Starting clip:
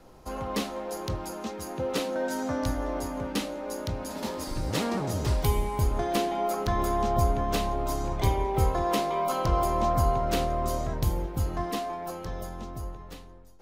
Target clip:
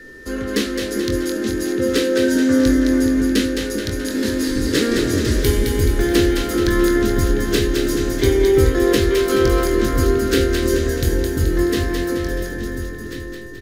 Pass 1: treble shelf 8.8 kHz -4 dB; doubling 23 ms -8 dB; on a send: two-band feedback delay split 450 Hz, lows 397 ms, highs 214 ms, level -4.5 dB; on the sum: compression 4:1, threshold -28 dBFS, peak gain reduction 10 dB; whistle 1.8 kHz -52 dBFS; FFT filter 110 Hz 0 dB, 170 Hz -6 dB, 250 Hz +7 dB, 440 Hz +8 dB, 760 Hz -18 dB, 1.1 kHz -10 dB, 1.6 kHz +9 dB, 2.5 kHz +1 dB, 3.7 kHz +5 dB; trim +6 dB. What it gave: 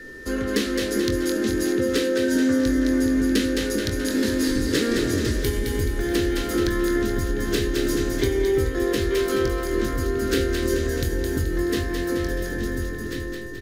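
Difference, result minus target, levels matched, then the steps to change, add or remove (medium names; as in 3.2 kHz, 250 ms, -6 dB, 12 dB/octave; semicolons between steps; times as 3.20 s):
compression: peak gain reduction +10 dB
remove: compression 4:1, threshold -28 dBFS, peak gain reduction 10 dB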